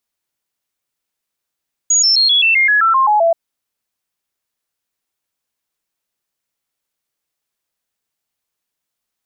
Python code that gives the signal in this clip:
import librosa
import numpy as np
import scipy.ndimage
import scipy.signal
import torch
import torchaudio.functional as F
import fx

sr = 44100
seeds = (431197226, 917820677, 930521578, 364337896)

y = fx.stepped_sweep(sr, from_hz=6740.0, direction='down', per_octave=3, tones=11, dwell_s=0.13, gap_s=0.0, level_db=-9.0)